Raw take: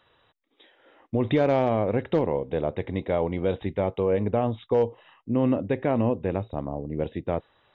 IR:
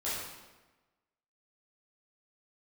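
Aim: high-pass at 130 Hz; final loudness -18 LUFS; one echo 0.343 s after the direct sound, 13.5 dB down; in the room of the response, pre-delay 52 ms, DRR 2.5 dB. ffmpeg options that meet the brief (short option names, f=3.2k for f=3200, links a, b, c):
-filter_complex "[0:a]highpass=130,aecho=1:1:343:0.211,asplit=2[a][b];[1:a]atrim=start_sample=2205,adelay=52[c];[b][c]afir=irnorm=-1:irlink=0,volume=-8dB[d];[a][d]amix=inputs=2:normalize=0,volume=6.5dB"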